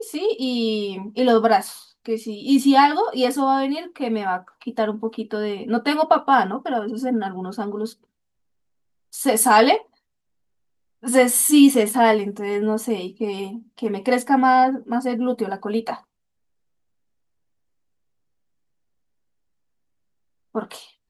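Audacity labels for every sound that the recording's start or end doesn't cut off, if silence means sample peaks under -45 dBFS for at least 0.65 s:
9.130000	9.830000	sound
11.030000	16.000000	sound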